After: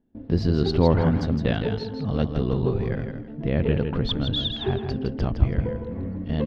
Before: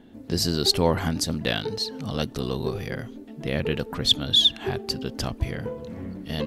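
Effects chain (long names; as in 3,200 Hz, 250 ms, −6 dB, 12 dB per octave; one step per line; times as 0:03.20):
spectral tilt −2 dB per octave
repeating echo 162 ms, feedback 23%, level −6.5 dB
noise gate −40 dBFS, range −23 dB
high-frequency loss of the air 260 metres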